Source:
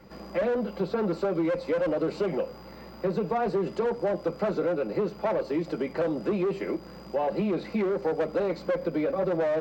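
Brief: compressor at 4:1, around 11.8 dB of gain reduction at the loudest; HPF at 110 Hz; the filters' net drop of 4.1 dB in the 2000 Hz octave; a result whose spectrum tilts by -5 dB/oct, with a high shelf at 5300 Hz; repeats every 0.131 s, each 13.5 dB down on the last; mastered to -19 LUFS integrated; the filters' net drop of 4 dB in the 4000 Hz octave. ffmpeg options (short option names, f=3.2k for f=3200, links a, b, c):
-af "highpass=110,equalizer=f=2k:t=o:g=-5,equalizer=f=4k:t=o:g=-7,highshelf=f=5.3k:g=7.5,acompressor=threshold=-38dB:ratio=4,aecho=1:1:131|262:0.211|0.0444,volume=21dB"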